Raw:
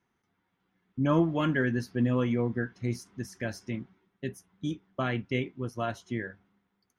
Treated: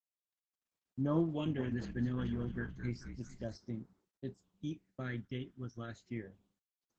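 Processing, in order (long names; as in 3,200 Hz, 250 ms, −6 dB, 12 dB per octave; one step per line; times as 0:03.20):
noise gate with hold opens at −58 dBFS
all-pass phaser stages 12, 0.32 Hz, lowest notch 740–2,700 Hz
0:01.24–0:03.56: echo with shifted repeats 216 ms, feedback 47%, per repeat −52 Hz, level −9 dB
level −8 dB
Opus 10 kbit/s 48,000 Hz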